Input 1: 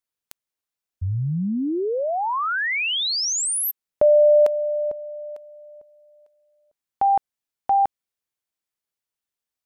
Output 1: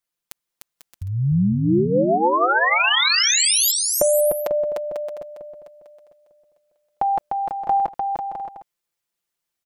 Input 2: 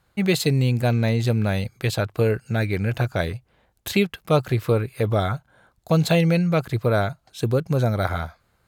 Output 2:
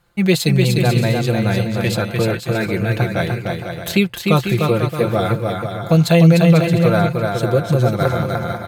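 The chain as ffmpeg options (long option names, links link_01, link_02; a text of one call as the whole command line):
ffmpeg -i in.wav -filter_complex "[0:a]aecho=1:1:5.8:0.59,asplit=2[link_01][link_02];[link_02]aecho=0:1:300|495|621.8|704.1|757.7:0.631|0.398|0.251|0.158|0.1[link_03];[link_01][link_03]amix=inputs=2:normalize=0,volume=2.5dB" out.wav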